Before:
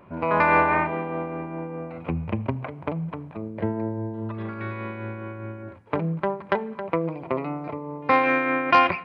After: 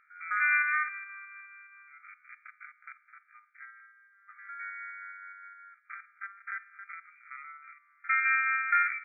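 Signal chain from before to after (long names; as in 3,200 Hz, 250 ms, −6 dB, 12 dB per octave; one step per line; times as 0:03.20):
spectrum averaged block by block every 50 ms
linear-phase brick-wall band-pass 1,200–2,400 Hz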